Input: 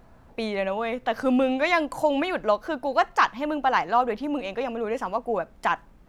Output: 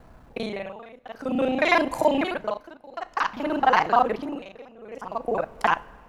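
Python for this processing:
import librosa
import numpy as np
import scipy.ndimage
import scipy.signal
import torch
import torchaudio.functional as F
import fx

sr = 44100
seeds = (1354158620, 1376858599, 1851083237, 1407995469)

y = fx.local_reverse(x, sr, ms=33.0)
y = fx.rev_double_slope(y, sr, seeds[0], early_s=0.28, late_s=4.1, knee_db=-18, drr_db=15.0)
y = y * (1.0 - 0.91 / 2.0 + 0.91 / 2.0 * np.cos(2.0 * np.pi * 0.53 * (np.arange(len(y)) / sr)))
y = y * 10.0 ** (3.5 / 20.0)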